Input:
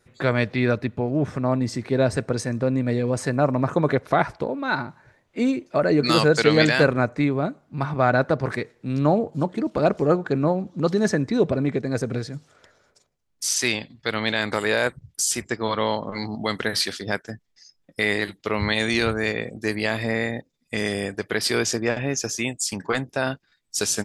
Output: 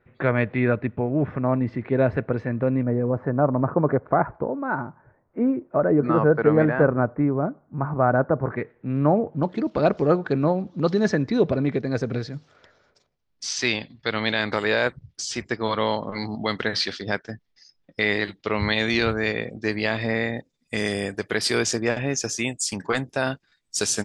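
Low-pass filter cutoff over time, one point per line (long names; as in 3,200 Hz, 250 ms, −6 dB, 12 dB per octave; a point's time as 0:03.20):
low-pass filter 24 dB per octave
2,500 Hz
from 0:02.83 1,400 Hz
from 0:08.56 2,200 Hz
from 0:09.43 5,400 Hz
from 0:20.38 10,000 Hz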